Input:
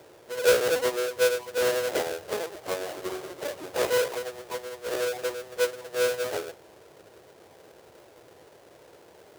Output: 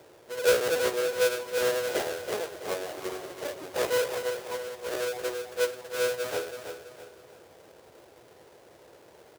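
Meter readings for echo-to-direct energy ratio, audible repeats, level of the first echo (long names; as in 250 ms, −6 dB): −7.5 dB, 4, −8.0 dB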